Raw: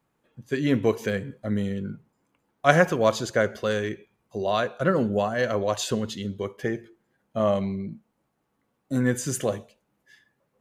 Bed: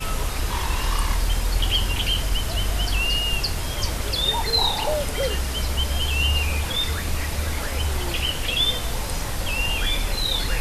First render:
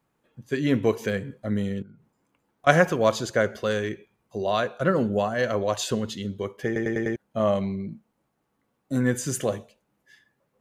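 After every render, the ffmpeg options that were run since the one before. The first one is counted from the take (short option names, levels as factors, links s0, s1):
-filter_complex "[0:a]asettb=1/sr,asplit=3[s0][s1][s2];[s0]atrim=end=1.824[s3];[s1]atrim=start=1.82:end=2.67,asetpts=PTS-STARTPTS,afade=t=in:d=0.004:c=qsin,afade=t=out:st=0.846:d=0.004:c=qsin,acompressor=threshold=0.00398:ratio=4:attack=3.2:release=140:knee=1:detection=peak[s4];[s2]atrim=start=2.666[s5];[s3][s4]acrossfade=d=0.004:c1=hsin:c2=qsin[s6];[s6][s5]acrossfade=d=0.004:c1=qsin:c2=hsin,asplit=6[s7][s8][s9][s10][s11][s12];[s7]atrim=end=6.762[s13];[s8]atrim=start=6.658:end=6.762[s14];[s9]atrim=start=6.658:end=6.762[s15];[s10]atrim=start=6.658:end=6.762[s16];[s11]atrim=start=6.658:end=6.762[s17];[s12]atrim=start=7.158[s18];[s13][s14]acrossfade=d=0.004:c1=hsin:c2=hsin[s19];[s19][s15]acrossfade=d=0.004:c1=hsin:c2=hsin[s20];[s20][s16]acrossfade=d=0.004:c1=hsin:c2=hsin[s21];[s21][s17]acrossfade=d=0.004:c1=hsin:c2=hsin[s22];[s22][s18]acrossfade=d=0.004:c1=hsin:c2=hsin"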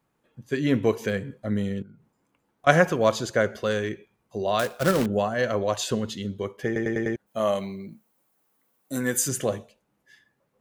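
-filter_complex "[0:a]asettb=1/sr,asplit=3[s0][s1][s2];[s0]atrim=end=4.594[s3];[s1]atrim=start=4.59:end=5.06,asetpts=PTS-STARTPTS,afade=t=in:d=0.004:c=qsin,afade=t=out:st=0.466:d=0.004:c=qsin,acrusher=bits=2:mode=log:mix=0:aa=0.000001[s4];[s2]atrim=start=5.056[s5];[s3][s4]acrossfade=d=0.004:c1=hsin:c2=qsin[s6];[s6][s5]acrossfade=d=0.004:c1=qsin:c2=hsin,asplit=3[s7][s8][s9];[s7]afade=t=out:st=7.26:d=0.02[s10];[s8]aemphasis=mode=production:type=bsi,afade=t=in:st=7.26:d=0.02,afade=t=out:st=9.27:d=0.02[s11];[s9]afade=t=in:st=9.27:d=0.02[s12];[s10][s11][s12]amix=inputs=3:normalize=0"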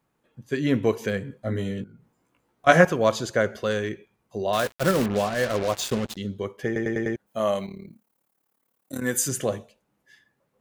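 -filter_complex "[0:a]asettb=1/sr,asplit=3[s0][s1][s2];[s0]atrim=end=1.434[s3];[s1]atrim=start=1.43:end=2.85,asetpts=PTS-STARTPTS,afade=t=in:d=0.004:c=qsin,afade=t=out:st=1.416:d=0.004:c=qsin,asplit=2[s4][s5];[s5]adelay=17,volume=0.794[s6];[s4][s6]amix=inputs=2:normalize=0,atrim=end_sample=62622[s7];[s2]atrim=start=2.846[s8];[s3][s7]acrossfade=d=0.004:c1=hsin:c2=qsin[s9];[s9][s8]acrossfade=d=0.004:c1=qsin:c2=hsin,asettb=1/sr,asplit=3[s10][s11][s12];[s10]atrim=end=4.534[s13];[s11]atrim=start=4.53:end=6.17,asetpts=PTS-STARTPTS,afade=t=in:d=0.004:c=qsin,afade=t=out:st=1.636:d=0.004:c=qsin,acrusher=bits=4:mix=0:aa=0.5[s14];[s12]atrim=start=6.166[s15];[s13][s14]acrossfade=d=0.004:c1=hsin:c2=qsin[s16];[s16][s15]acrossfade=d=0.004:c1=qsin:c2=hsin,asettb=1/sr,asplit=3[s17][s18][s19];[s17]atrim=end=7.664[s20];[s18]atrim=start=7.66:end=9.03,asetpts=PTS-STARTPTS,afade=t=in:d=0.004:c=qsin,afade=t=out:st=1.366:d=0.004:c=qsin,tremolo=f=36:d=0.857[s21];[s19]atrim=start=9.026[s22];[s20][s21]acrossfade=d=0.004:c1=hsin:c2=qsin[s23];[s23][s22]acrossfade=d=0.004:c1=qsin:c2=hsin"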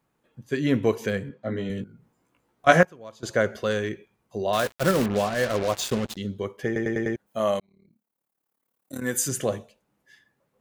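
-filter_complex "[0:a]asettb=1/sr,asplit=3[s0][s1][s2];[s0]atrim=end=1.294[s3];[s1]atrim=start=1.29:end=1.7,asetpts=PTS-STARTPTS,afade=t=in:d=0.004:c=qsin,afade=t=out:st=0.406:d=0.004:c=qsin,highpass=140,lowpass=4200[s4];[s2]atrim=start=1.696[s5];[s3][s4]acrossfade=d=0.004:c1=hsin:c2=qsin[s6];[s6][s5]acrossfade=d=0.004:c1=qsin:c2=hsin,asplit=4[s7][s8][s9][s10];[s7]atrim=end=2.83,asetpts=PTS-STARTPTS,afade=t=out:st=2.68:d=0.15:c=log:silence=0.0841395[s11];[s8]atrim=start=2.83:end=3.23,asetpts=PTS-STARTPTS,volume=0.0841[s12];[s9]atrim=start=3.23:end=7.6,asetpts=PTS-STARTPTS,afade=t=in:d=0.15:c=log:silence=0.0841395,afade=t=out:st=4.366:d=0.004:c=hsin[s13];[s10]atrim=start=7.6,asetpts=PTS-STARTPTS,afade=t=in:d=1.81[s14];[s11][s12][s13][s14]concat=n=4:v=0:a=1"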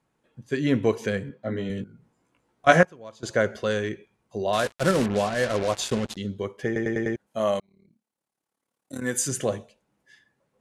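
-af "lowpass=f=11000:w=0.5412,lowpass=f=11000:w=1.3066,bandreject=f=1200:w=26"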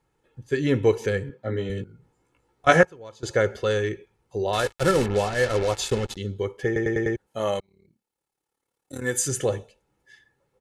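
-af "lowshelf=f=97:g=8,aecho=1:1:2.3:0.51"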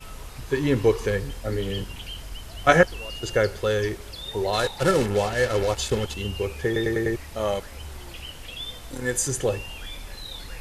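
-filter_complex "[1:a]volume=0.2[s0];[0:a][s0]amix=inputs=2:normalize=0"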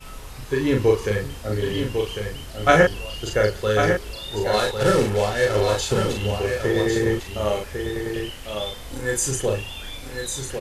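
-filter_complex "[0:a]asplit=2[s0][s1];[s1]adelay=38,volume=0.708[s2];[s0][s2]amix=inputs=2:normalize=0,asplit=2[s3][s4];[s4]aecho=0:1:1100:0.473[s5];[s3][s5]amix=inputs=2:normalize=0"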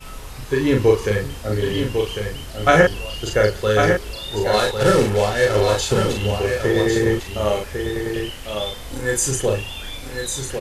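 -af "volume=1.41,alimiter=limit=0.794:level=0:latency=1"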